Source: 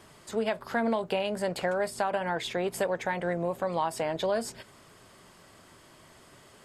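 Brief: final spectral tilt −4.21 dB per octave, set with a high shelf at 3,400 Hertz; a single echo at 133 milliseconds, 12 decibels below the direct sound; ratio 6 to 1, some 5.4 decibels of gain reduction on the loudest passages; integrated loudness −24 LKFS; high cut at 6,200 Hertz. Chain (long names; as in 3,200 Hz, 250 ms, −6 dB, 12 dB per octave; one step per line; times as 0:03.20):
low-pass filter 6,200 Hz
high-shelf EQ 3,400 Hz −8.5 dB
downward compressor 6 to 1, threshold −30 dBFS
single-tap delay 133 ms −12 dB
level +11.5 dB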